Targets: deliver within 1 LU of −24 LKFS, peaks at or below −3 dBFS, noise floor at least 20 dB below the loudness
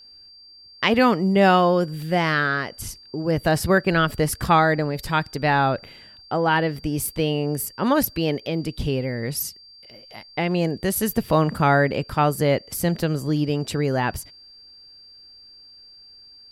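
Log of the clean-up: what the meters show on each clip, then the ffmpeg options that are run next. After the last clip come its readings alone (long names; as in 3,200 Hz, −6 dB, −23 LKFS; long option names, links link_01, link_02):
interfering tone 4,700 Hz; level of the tone −45 dBFS; integrated loudness −22.0 LKFS; sample peak −4.5 dBFS; target loudness −24.0 LKFS
→ -af "bandreject=frequency=4700:width=30"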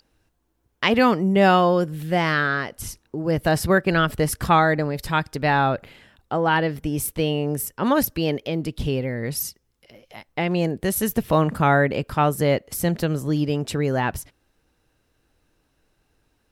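interfering tone none found; integrated loudness −22.0 LKFS; sample peak −4.5 dBFS; target loudness −24.0 LKFS
→ -af "volume=-2dB"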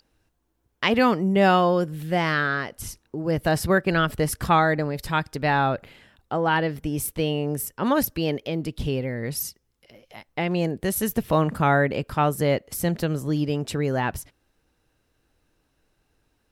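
integrated loudness −24.0 LKFS; sample peak −6.5 dBFS; background noise floor −71 dBFS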